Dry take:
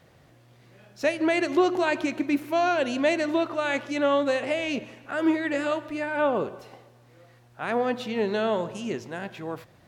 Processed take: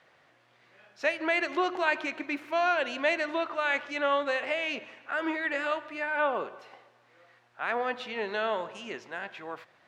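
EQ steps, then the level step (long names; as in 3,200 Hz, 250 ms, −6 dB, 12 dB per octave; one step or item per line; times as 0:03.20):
resonant band-pass 1,700 Hz, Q 0.76
+1.5 dB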